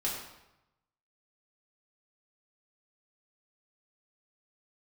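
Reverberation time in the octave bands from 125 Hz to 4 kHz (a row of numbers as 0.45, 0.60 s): 1.2, 0.90, 0.90, 0.95, 0.80, 0.75 s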